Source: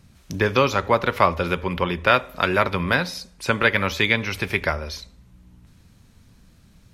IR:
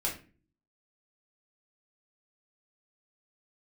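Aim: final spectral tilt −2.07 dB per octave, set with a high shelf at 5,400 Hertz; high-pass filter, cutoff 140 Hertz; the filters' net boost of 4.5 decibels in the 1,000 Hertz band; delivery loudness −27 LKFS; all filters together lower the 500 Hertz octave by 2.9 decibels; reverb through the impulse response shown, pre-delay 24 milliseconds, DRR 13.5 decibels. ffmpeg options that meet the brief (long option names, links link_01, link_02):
-filter_complex "[0:a]highpass=140,equalizer=frequency=500:width_type=o:gain=-5.5,equalizer=frequency=1000:width_type=o:gain=7,highshelf=frequency=5400:gain=-4,asplit=2[link_01][link_02];[1:a]atrim=start_sample=2205,adelay=24[link_03];[link_02][link_03]afir=irnorm=-1:irlink=0,volume=-18.5dB[link_04];[link_01][link_04]amix=inputs=2:normalize=0,volume=-7dB"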